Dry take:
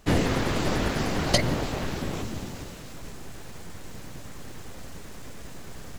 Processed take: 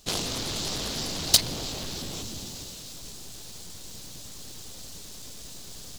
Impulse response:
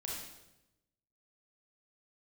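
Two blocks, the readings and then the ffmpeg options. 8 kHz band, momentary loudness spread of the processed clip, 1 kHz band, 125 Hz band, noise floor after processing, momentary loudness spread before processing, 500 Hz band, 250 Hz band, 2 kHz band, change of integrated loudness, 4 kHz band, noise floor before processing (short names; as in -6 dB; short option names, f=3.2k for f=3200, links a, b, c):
+8.0 dB, 20 LU, -8.5 dB, -9.5 dB, -42 dBFS, 19 LU, -9.5 dB, -9.5 dB, -8.0 dB, -0.5 dB, +5.5 dB, -40 dBFS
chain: -af "aeval=exprs='0.562*(cos(1*acos(clip(val(0)/0.562,-1,1)))-cos(1*PI/2))+0.178*(cos(7*acos(clip(val(0)/0.562,-1,1)))-cos(7*PI/2))':c=same,highshelf=f=2.8k:t=q:w=1.5:g=12,volume=-7.5dB"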